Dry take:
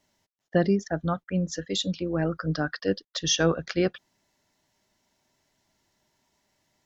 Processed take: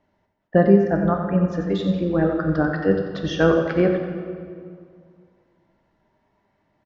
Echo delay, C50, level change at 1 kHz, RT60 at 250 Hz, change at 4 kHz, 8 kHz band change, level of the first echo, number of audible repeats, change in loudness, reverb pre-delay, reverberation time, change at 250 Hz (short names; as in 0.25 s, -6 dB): 90 ms, 4.0 dB, +7.5 dB, 2.4 s, -7.0 dB, n/a, -9.0 dB, 1, +6.5 dB, 8 ms, 2.2 s, +8.0 dB